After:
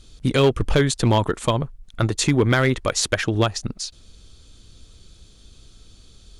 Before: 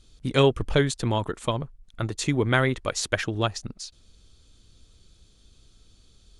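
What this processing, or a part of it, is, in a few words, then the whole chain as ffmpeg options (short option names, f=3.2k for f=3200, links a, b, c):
limiter into clipper: -af "alimiter=limit=-14dB:level=0:latency=1:release=215,asoftclip=type=hard:threshold=-18dB,volume=8dB"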